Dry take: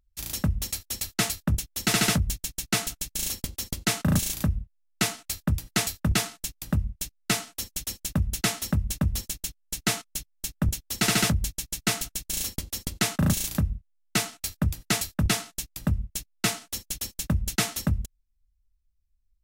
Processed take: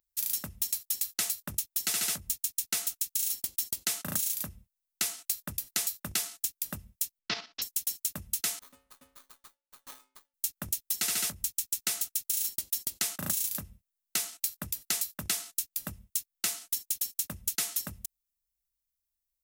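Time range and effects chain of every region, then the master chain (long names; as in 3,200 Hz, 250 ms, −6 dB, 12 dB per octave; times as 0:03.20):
0:07.19–0:07.62: each half-wave held at its own peak + Butterworth low-pass 5,300 Hz 48 dB per octave + output level in coarse steps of 11 dB
0:08.59–0:10.34: parametric band 9,000 Hz +11.5 dB 0.33 octaves + stiff-string resonator 260 Hz, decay 0.56 s, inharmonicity 0.03 + windowed peak hold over 17 samples
whole clip: RIAA equalisation recording; downward compressor, threshold −20 dBFS; level −7 dB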